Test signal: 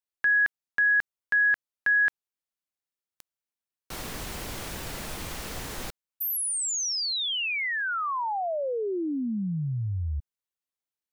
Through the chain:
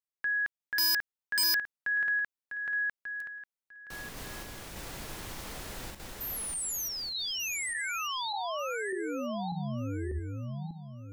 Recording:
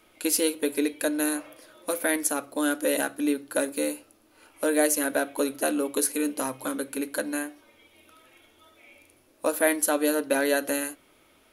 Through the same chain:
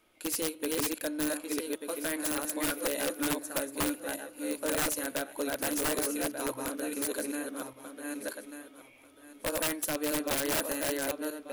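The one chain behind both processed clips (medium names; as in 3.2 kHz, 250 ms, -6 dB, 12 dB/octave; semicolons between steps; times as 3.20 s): backward echo that repeats 595 ms, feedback 44%, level -1 dB; integer overflow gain 15 dB; trim -8 dB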